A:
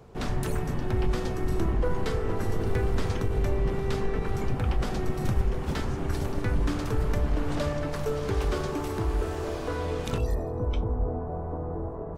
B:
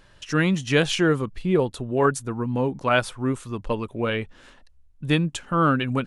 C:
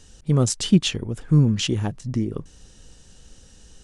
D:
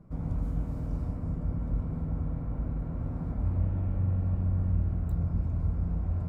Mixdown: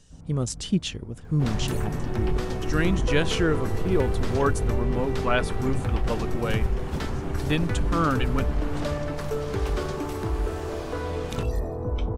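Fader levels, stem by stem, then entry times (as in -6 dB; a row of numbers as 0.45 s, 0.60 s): +0.5 dB, -4.0 dB, -7.5 dB, -11.5 dB; 1.25 s, 2.40 s, 0.00 s, 0.00 s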